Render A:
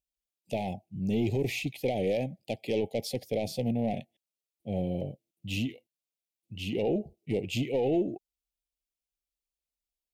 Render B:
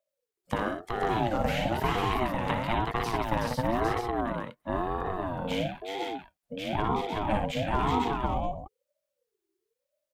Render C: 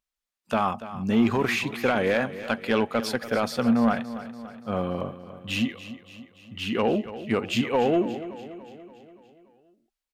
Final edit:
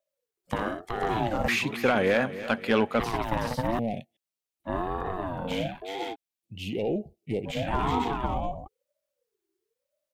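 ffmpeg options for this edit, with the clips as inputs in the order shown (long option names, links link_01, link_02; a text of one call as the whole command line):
ffmpeg -i take0.wav -i take1.wav -i take2.wav -filter_complex "[0:a]asplit=2[link_01][link_02];[1:a]asplit=4[link_03][link_04][link_05][link_06];[link_03]atrim=end=1.482[link_07];[2:a]atrim=start=1.478:end=3.002[link_08];[link_04]atrim=start=2.998:end=3.792[link_09];[link_01]atrim=start=3.788:end=4.642[link_10];[link_05]atrim=start=4.638:end=6.16[link_11];[link_02]atrim=start=6.12:end=7.49[link_12];[link_06]atrim=start=7.45[link_13];[link_07][link_08]acrossfade=duration=0.004:curve1=hsin:curve2=hsin[link_14];[link_14][link_09]acrossfade=duration=0.004:curve1=hsin:curve2=hsin[link_15];[link_15][link_10]acrossfade=duration=0.004:curve1=hsin:curve2=hsin[link_16];[link_16][link_11]acrossfade=duration=0.004:curve1=hsin:curve2=hsin[link_17];[link_17][link_12]acrossfade=duration=0.04:curve1=tri:curve2=tri[link_18];[link_18][link_13]acrossfade=duration=0.04:curve1=tri:curve2=tri" out.wav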